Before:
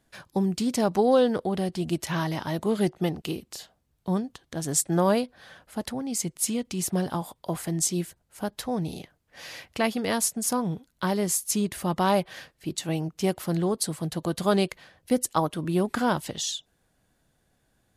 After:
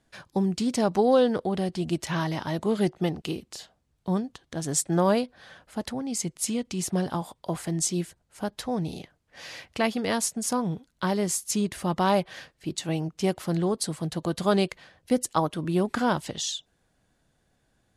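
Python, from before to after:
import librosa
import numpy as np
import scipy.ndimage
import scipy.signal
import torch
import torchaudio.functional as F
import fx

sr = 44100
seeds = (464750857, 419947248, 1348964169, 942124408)

y = scipy.signal.sosfilt(scipy.signal.butter(2, 9400.0, 'lowpass', fs=sr, output='sos'), x)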